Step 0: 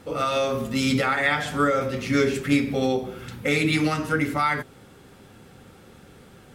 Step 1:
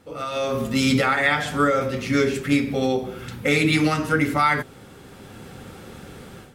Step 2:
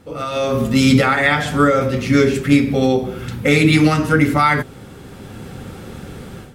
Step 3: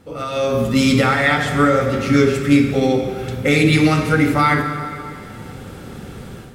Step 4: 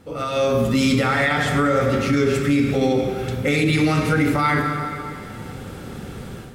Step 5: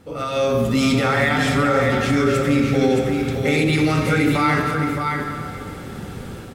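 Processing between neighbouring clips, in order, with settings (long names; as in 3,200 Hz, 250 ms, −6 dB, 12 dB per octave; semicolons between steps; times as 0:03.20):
automatic gain control gain up to 15 dB; level −6.5 dB
low-shelf EQ 300 Hz +6 dB; level +4 dB
convolution reverb RT60 2.7 s, pre-delay 22 ms, DRR 7 dB; level −1.5 dB
brickwall limiter −10 dBFS, peak gain reduction 7.5 dB
single-tap delay 618 ms −5.5 dB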